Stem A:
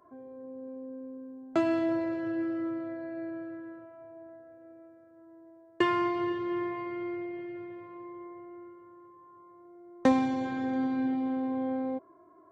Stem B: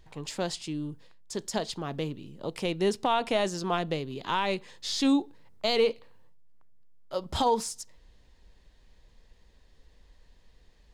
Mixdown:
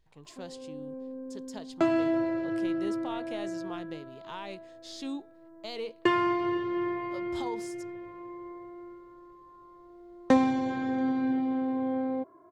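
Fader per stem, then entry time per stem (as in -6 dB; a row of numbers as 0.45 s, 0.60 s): +1.5 dB, -13.0 dB; 0.25 s, 0.00 s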